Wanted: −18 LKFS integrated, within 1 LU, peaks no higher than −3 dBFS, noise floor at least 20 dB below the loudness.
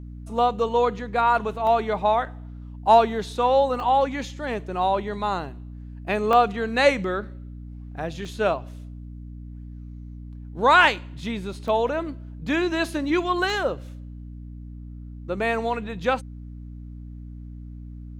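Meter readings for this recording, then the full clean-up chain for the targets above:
number of dropouts 6; longest dropout 1.1 ms; mains hum 60 Hz; hum harmonics up to 300 Hz; level of the hum −35 dBFS; integrated loudness −23.0 LKFS; sample peak −4.0 dBFS; target loudness −18.0 LKFS
→ repair the gap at 0:01.67/0:03.80/0:06.33/0:08.25/0:11.68/0:13.50, 1.1 ms
hum removal 60 Hz, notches 5
level +5 dB
brickwall limiter −3 dBFS

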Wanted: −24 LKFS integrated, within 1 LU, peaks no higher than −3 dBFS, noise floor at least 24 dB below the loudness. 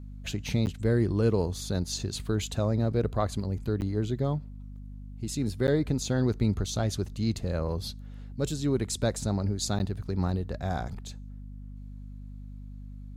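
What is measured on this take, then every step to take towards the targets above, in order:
number of dropouts 4; longest dropout 9.6 ms; mains hum 50 Hz; hum harmonics up to 250 Hz; level of the hum −39 dBFS; integrated loudness −29.5 LKFS; sample peak −14.0 dBFS; target loudness −24.0 LKFS
→ repair the gap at 0:00.66/0:03.81/0:05.67/0:09.79, 9.6 ms
mains-hum notches 50/100/150/200/250 Hz
level +5.5 dB

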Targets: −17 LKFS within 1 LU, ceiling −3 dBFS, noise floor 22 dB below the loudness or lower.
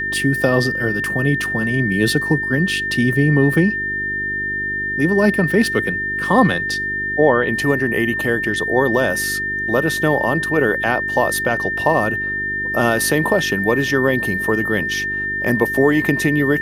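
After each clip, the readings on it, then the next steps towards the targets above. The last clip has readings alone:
mains hum 50 Hz; hum harmonics up to 400 Hz; level of the hum −33 dBFS; interfering tone 1,800 Hz; level of the tone −20 dBFS; integrated loudness −17.5 LKFS; sample peak −2.0 dBFS; target loudness −17.0 LKFS
→ hum removal 50 Hz, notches 8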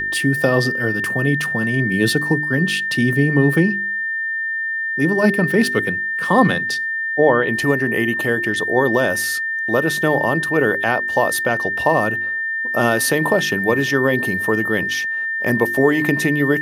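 mains hum none found; interfering tone 1,800 Hz; level of the tone −20 dBFS
→ notch filter 1,800 Hz, Q 30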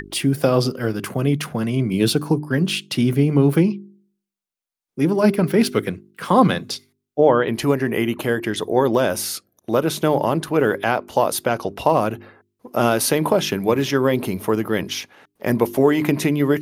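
interfering tone none found; integrated loudness −20.0 LKFS; sample peak −2.5 dBFS; target loudness −17.0 LKFS
→ level +3 dB
brickwall limiter −3 dBFS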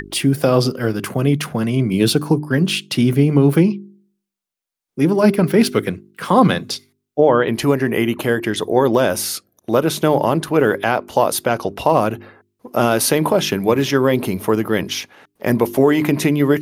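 integrated loudness −17.0 LKFS; sample peak −3.0 dBFS; background noise floor −78 dBFS

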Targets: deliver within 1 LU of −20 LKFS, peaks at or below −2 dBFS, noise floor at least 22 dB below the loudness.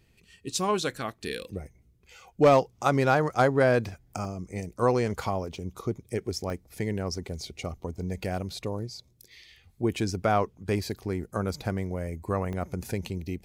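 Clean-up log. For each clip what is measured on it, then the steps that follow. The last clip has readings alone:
number of dropouts 3; longest dropout 1.1 ms; integrated loudness −28.5 LKFS; sample peak −11.5 dBFS; target loudness −20.0 LKFS
→ repair the gap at 0:04.25/0:06.50/0:12.53, 1.1 ms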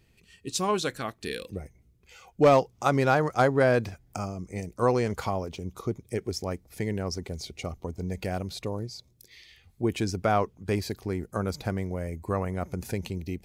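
number of dropouts 0; integrated loudness −28.5 LKFS; sample peak −11.5 dBFS; target loudness −20.0 LKFS
→ level +8.5 dB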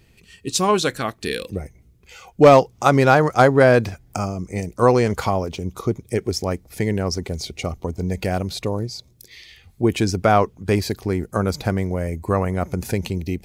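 integrated loudness −20.0 LKFS; sample peak −3.0 dBFS; background noise floor −55 dBFS

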